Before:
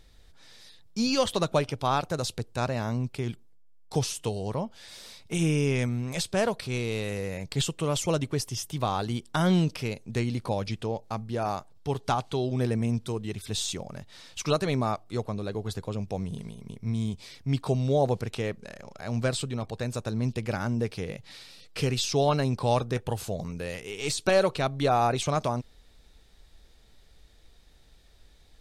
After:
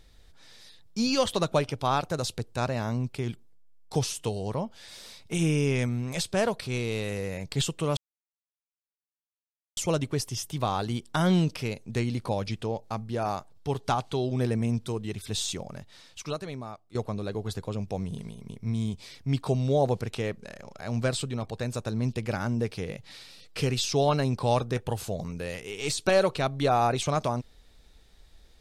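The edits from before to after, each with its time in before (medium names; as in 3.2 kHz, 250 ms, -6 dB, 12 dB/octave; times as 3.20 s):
7.97 s: insert silence 1.80 s
13.90–15.15 s: fade out quadratic, to -13.5 dB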